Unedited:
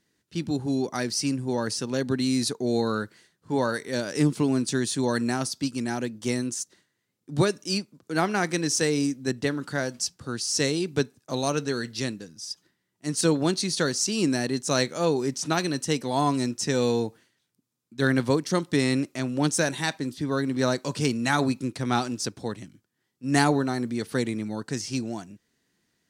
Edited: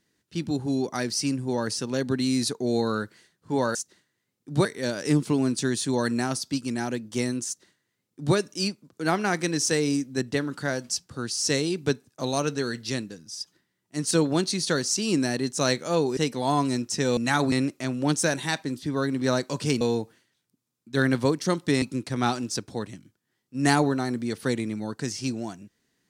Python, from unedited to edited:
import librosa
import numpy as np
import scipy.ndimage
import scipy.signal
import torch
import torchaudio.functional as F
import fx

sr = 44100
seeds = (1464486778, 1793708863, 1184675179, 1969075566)

y = fx.edit(x, sr, fx.duplicate(start_s=6.56, length_s=0.9, to_s=3.75),
    fx.cut(start_s=15.27, length_s=0.59),
    fx.swap(start_s=16.86, length_s=2.01, other_s=21.16, other_length_s=0.35), tone=tone)